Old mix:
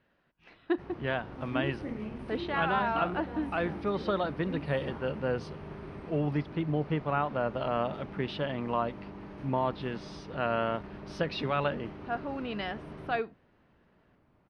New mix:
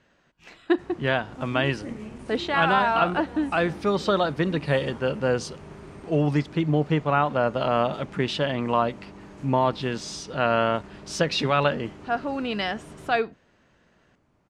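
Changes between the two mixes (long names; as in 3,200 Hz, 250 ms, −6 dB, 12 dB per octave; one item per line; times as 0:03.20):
speech +7.5 dB
master: remove moving average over 6 samples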